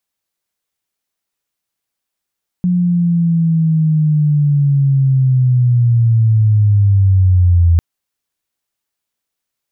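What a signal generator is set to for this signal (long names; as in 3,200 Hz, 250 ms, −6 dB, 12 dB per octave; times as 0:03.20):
glide linear 180 Hz → 83 Hz −10.5 dBFS → −6.5 dBFS 5.15 s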